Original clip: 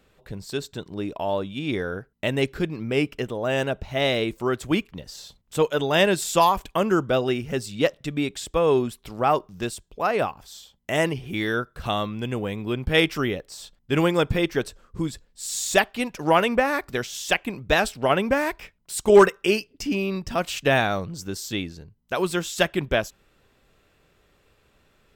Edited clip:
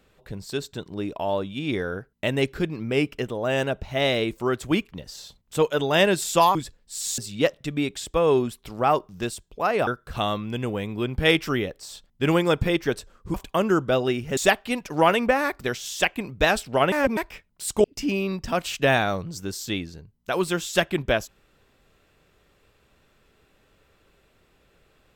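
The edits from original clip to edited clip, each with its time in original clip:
6.55–7.58 s: swap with 15.03–15.66 s
10.27–11.56 s: delete
18.21–18.46 s: reverse
19.13–19.67 s: delete

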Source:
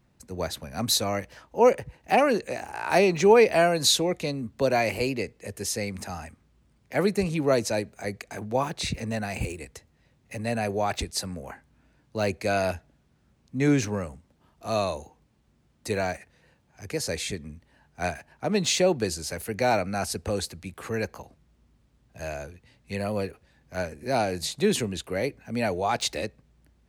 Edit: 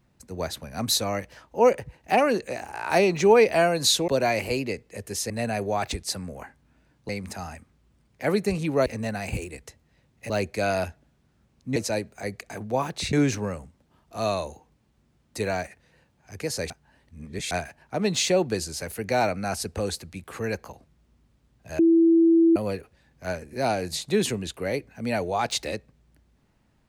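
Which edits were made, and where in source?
4.08–4.58 s: delete
7.57–8.94 s: move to 13.63 s
10.38–12.17 s: move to 5.80 s
17.20–18.01 s: reverse
22.29–23.06 s: bleep 331 Hz -14 dBFS

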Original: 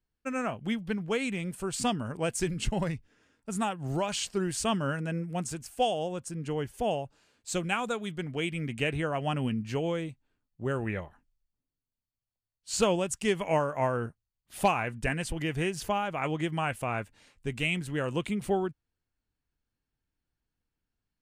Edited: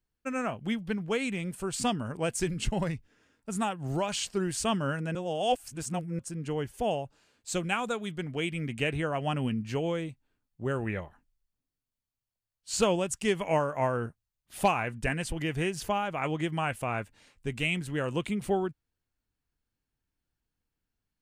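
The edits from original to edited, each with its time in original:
5.15–6.19 s: reverse

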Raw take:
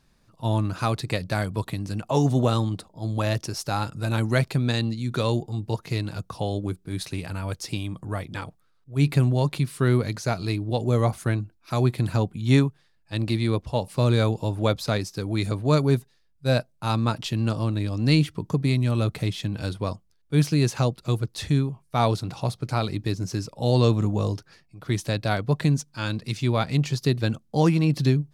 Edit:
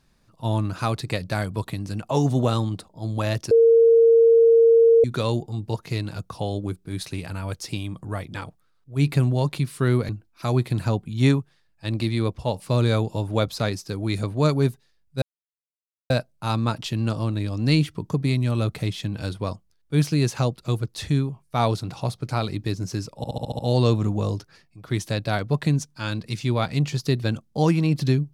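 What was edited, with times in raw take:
3.51–5.04 s: bleep 459 Hz -11 dBFS
10.09–11.37 s: delete
16.50 s: insert silence 0.88 s
23.57 s: stutter 0.07 s, 7 plays

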